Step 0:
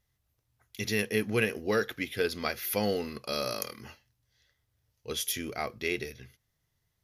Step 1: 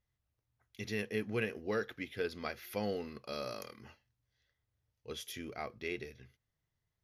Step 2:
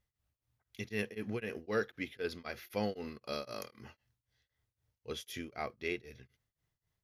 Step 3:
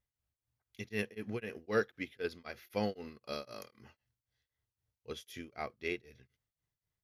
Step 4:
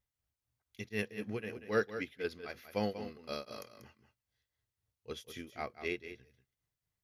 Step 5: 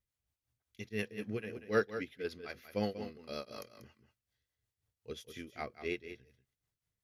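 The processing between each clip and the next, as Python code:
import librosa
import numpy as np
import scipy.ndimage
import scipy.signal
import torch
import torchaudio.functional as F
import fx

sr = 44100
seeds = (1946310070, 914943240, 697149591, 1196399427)

y1 = fx.lowpass(x, sr, hz=3100.0, slope=6)
y1 = F.gain(torch.from_numpy(y1), -7.0).numpy()
y2 = y1 * np.abs(np.cos(np.pi * 3.9 * np.arange(len(y1)) / sr))
y2 = F.gain(torch.from_numpy(y2), 3.0).numpy()
y3 = fx.upward_expand(y2, sr, threshold_db=-46.0, expansion=1.5)
y3 = F.gain(torch.from_numpy(y3), 3.0).numpy()
y4 = y3 + 10.0 ** (-11.0 / 20.0) * np.pad(y3, (int(189 * sr / 1000.0), 0))[:len(y3)]
y5 = fx.rotary(y4, sr, hz=5.5)
y5 = F.gain(torch.from_numpy(y5), 1.5).numpy()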